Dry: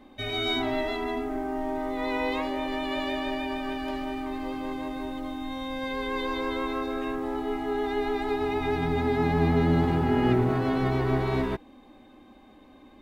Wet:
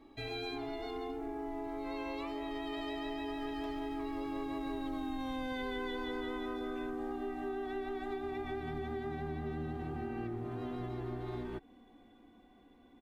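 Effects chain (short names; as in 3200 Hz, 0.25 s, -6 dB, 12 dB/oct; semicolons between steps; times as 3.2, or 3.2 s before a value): Doppler pass-by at 5.27, 22 m/s, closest 15 m; bell 180 Hz +4.5 dB 2 oct; comb 2.6 ms, depth 41%; compressor 6:1, threshold -46 dBFS, peak gain reduction 17.5 dB; gain +9 dB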